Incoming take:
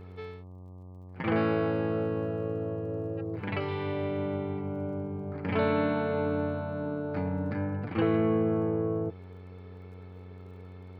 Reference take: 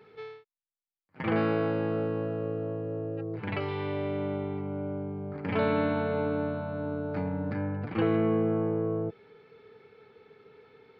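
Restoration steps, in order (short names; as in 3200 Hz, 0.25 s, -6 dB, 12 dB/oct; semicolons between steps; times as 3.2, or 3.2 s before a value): de-click; de-hum 91.5 Hz, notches 13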